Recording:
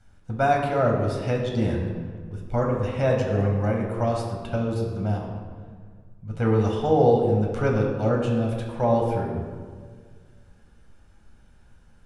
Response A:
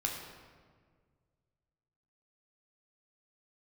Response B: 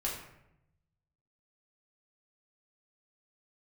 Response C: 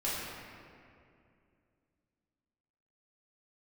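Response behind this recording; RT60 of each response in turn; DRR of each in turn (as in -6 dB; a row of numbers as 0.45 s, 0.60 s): A; 1.7 s, 0.85 s, 2.4 s; -0.5 dB, -5.0 dB, -9.5 dB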